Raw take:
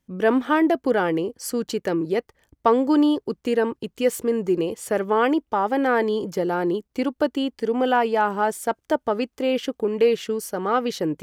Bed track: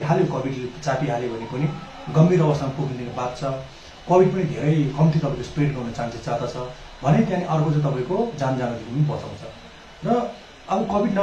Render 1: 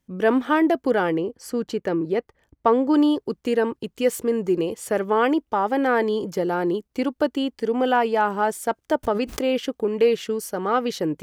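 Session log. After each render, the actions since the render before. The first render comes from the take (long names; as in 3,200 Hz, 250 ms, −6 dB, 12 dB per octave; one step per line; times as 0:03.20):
0:01.14–0:02.94: high-shelf EQ 3,900 Hz −10 dB
0:09.03–0:09.43: background raised ahead of every attack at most 46 dB per second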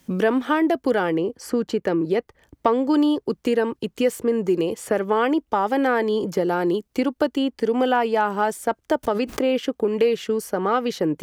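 multiband upward and downward compressor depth 70%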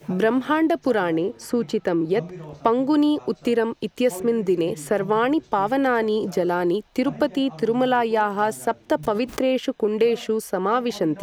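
mix in bed track −19.5 dB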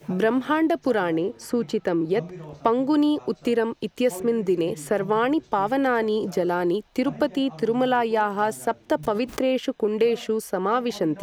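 level −1.5 dB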